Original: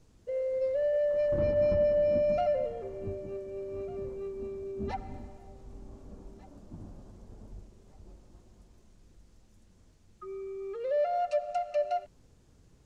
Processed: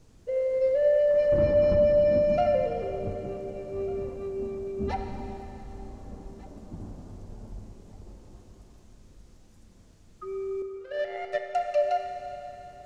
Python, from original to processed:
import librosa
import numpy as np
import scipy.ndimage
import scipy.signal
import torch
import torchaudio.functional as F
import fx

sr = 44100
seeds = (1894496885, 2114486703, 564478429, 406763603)

y = fx.power_curve(x, sr, exponent=3.0, at=(10.62, 11.55))
y = fx.rev_schroeder(y, sr, rt60_s=3.6, comb_ms=28, drr_db=4.5)
y = y * librosa.db_to_amplitude(4.5)